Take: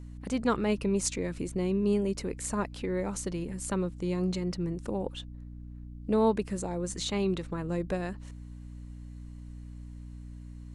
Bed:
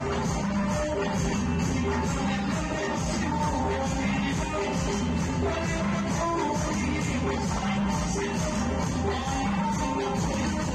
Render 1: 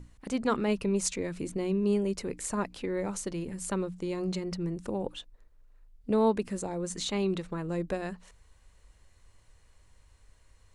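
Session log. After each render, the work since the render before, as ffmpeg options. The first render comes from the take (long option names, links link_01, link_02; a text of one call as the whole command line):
ffmpeg -i in.wav -af "bandreject=frequency=60:width_type=h:width=6,bandreject=frequency=120:width_type=h:width=6,bandreject=frequency=180:width_type=h:width=6,bandreject=frequency=240:width_type=h:width=6,bandreject=frequency=300:width_type=h:width=6" out.wav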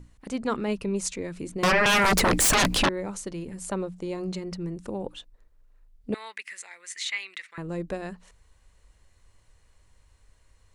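ffmpeg -i in.wav -filter_complex "[0:a]asettb=1/sr,asplit=3[link_01][link_02][link_03];[link_01]atrim=end=1.634[link_04];[link_02]atrim=start=1.63:end=2.89,asetpts=PTS-STARTPTS,afade=type=in:duration=0.004:curve=qsin,afade=type=out:start_time=1.256:duration=0.004:curve=qsin,aeval=exprs='0.141*sin(PI/2*10*val(0)/0.141)':channel_layout=same[link_05];[link_03]atrim=start=2.886[link_06];[link_04][link_05]acrossfade=duration=0.004:curve1=hsin:curve2=qsin[link_07];[link_07][link_06]acrossfade=duration=0.004:curve1=qsin:curve2=hsin,asettb=1/sr,asplit=3[link_08][link_09][link_10];[link_08]atrim=end=3.564[link_11];[link_09]atrim=start=3.56:end=4.17,asetpts=PTS-STARTPTS,afade=type=in:duration=0.004:curve=qsin,afade=type=out:start_time=0.606:duration=0.004:curve=qsin,equalizer=frequency=670:width_type=o:width=0.77:gain=6[link_12];[link_10]atrim=start=4.166[link_13];[link_11][link_12]acrossfade=duration=0.004:curve1=hsin:curve2=qsin[link_14];[link_14][link_13]acrossfade=duration=0.004:curve1=qsin:curve2=hsin,asettb=1/sr,asplit=3[link_15][link_16][link_17];[link_15]atrim=end=6.144[link_18];[link_16]atrim=start=6.14:end=7.58,asetpts=PTS-STARTPTS,afade=type=in:duration=0.004:curve=qsin,afade=type=out:start_time=1.436:duration=0.004:curve=qsin,highpass=frequency=2000:width_type=q:width=5.8[link_19];[link_17]atrim=start=7.576[link_20];[link_18][link_19]acrossfade=duration=0.004:curve1=hsin:curve2=qsin[link_21];[link_21][link_20]acrossfade=duration=0.004:curve1=qsin:curve2=hsin" out.wav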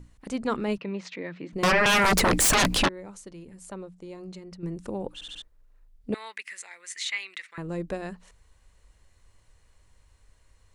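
ffmpeg -i in.wav -filter_complex "[0:a]asettb=1/sr,asplit=3[link_01][link_02][link_03];[link_01]atrim=end=0.784[link_04];[link_02]atrim=start=0.78:end=1.53,asetpts=PTS-STARTPTS,afade=type=in:duration=0.004:curve=qsin,afade=type=out:start_time=0.746:duration=0.004:curve=qsin,highpass=frequency=160:width=0.5412,highpass=frequency=160:width=1.3066,equalizer=frequency=220:width_type=q:width=4:gain=-6,equalizer=frequency=400:width_type=q:width=4:gain=-6,equalizer=frequency=1900:width_type=q:width=4:gain=6,lowpass=frequency=4000:width=0.5412,lowpass=frequency=4000:width=1.3066[link_05];[link_03]atrim=start=1.526[link_06];[link_04][link_05]acrossfade=duration=0.004:curve1=hsin:curve2=qsin[link_07];[link_07][link_06]acrossfade=duration=0.004:curve1=qsin:curve2=hsin,asplit=7[link_08][link_09][link_10][link_11][link_12][link_13][link_14];[link_08]atrim=end=2.882[link_15];[link_09]atrim=start=2.878:end=4.632,asetpts=PTS-STARTPTS,volume=-9dB[link_16];[link_10]atrim=start=4.628:end=5.212[link_17];[link_11]atrim=start=5.138:end=5.212[link_18];[link_12]atrim=start=5.138:end=5.212[link_19];[link_13]atrim=start=5.138:end=5.212[link_20];[link_14]atrim=start=5.418[link_21];[link_15][link_16]acrossfade=duration=0.004:curve1=hsin:curve2=hsin[link_22];[link_22][link_17]acrossfade=duration=0.004:curve1=hsin:curve2=hsin[link_23];[link_23][link_18]acrossfade=duration=0.004:curve1=hsin:curve2=hsin[link_24];[link_24][link_19]acrossfade=duration=0.004:curve1=hsin:curve2=hsin[link_25];[link_25][link_20]acrossfade=duration=0.004:curve1=hsin:curve2=hsin[link_26];[link_26][link_21]acrossfade=duration=0.004:curve1=hsin:curve2=hsin" out.wav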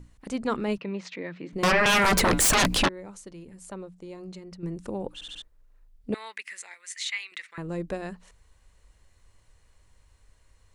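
ffmpeg -i in.wav -filter_complex "[0:a]asettb=1/sr,asplit=3[link_01][link_02][link_03];[link_01]atrim=end=1.374[link_04];[link_02]atrim=start=1.37:end=2.56,asetpts=PTS-STARTPTS,afade=type=in:duration=0.004:curve=qsin,afade=type=out:start_time=1.186:duration=0.004:curve=qsin,bandreject=frequency=141.9:width_type=h:width=4,bandreject=frequency=283.8:width_type=h:width=4,bandreject=frequency=425.7:width_type=h:width=4,bandreject=frequency=567.6:width_type=h:width=4,bandreject=frequency=709.5:width_type=h:width=4,bandreject=frequency=851.4:width_type=h:width=4,bandreject=frequency=993.3:width_type=h:width=4,bandreject=frequency=1135.2:width_type=h:width=4,bandreject=frequency=1277.1:width_type=h:width=4,bandreject=frequency=1419:width_type=h:width=4,bandreject=frequency=1560.9:width_type=h:width=4,bandreject=frequency=1702.8:width_type=h:width=4,bandreject=frequency=1844.7:width_type=h:width=4,bandreject=frequency=1986.6:width_type=h:width=4,bandreject=frequency=2128.5:width_type=h:width=4,bandreject=frequency=2270.4:width_type=h:width=4,bandreject=frequency=2412.3:width_type=h:width=4,bandreject=frequency=2554.2:width_type=h:width=4,bandreject=frequency=2696.1:width_type=h:width=4,bandreject=frequency=2838:width_type=h:width=4,bandreject=frequency=2979.9:width_type=h:width=4,bandreject=frequency=3121.8:width_type=h:width=4,bandreject=frequency=3263.7:width_type=h:width=4,bandreject=frequency=3405.6:width_type=h:width=4,bandreject=frequency=3547.5:width_type=h:width=4,bandreject=frequency=3689.4:width_type=h:width=4,bandreject=frequency=3831.3:width_type=h:width=4,bandreject=frequency=3973.2:width_type=h:width=4,bandreject=frequency=4115.1:width_type=h:width=4,bandreject=frequency=4257:width_type=h:width=4[link_05];[link_03]atrim=start=2.556[link_06];[link_04][link_05]acrossfade=duration=0.004:curve1=hsin:curve2=qsin[link_07];[link_07][link_06]acrossfade=duration=0.004:curve1=qsin:curve2=hsin,asettb=1/sr,asplit=3[link_08][link_09][link_10];[link_08]atrim=end=6.744[link_11];[link_09]atrim=start=6.74:end=7.32,asetpts=PTS-STARTPTS,afade=type=in:duration=0.004:curve=qsin,afade=type=out:start_time=0.576:duration=0.004:curve=qsin,equalizer=frequency=230:width=0.43:gain=-14[link_12];[link_10]atrim=start=7.316[link_13];[link_11][link_12]acrossfade=duration=0.004:curve1=hsin:curve2=qsin[link_14];[link_14][link_13]acrossfade=duration=0.004:curve1=qsin:curve2=hsin" out.wav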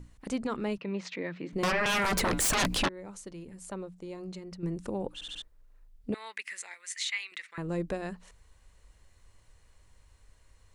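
ffmpeg -i in.wav -af "alimiter=limit=-22.5dB:level=0:latency=1:release=317" out.wav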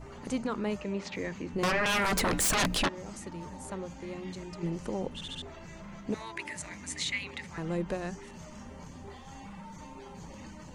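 ffmpeg -i in.wav -i bed.wav -filter_complex "[1:a]volume=-19dB[link_01];[0:a][link_01]amix=inputs=2:normalize=0" out.wav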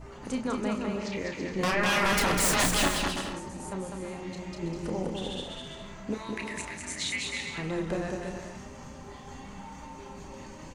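ffmpeg -i in.wav -filter_complex "[0:a]asplit=2[link_01][link_02];[link_02]adelay=32,volume=-7dB[link_03];[link_01][link_03]amix=inputs=2:normalize=0,aecho=1:1:200|330|414.5|469.4|505.1:0.631|0.398|0.251|0.158|0.1" out.wav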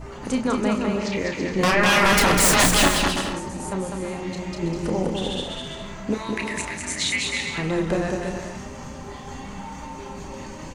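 ffmpeg -i in.wav -af "volume=8dB" out.wav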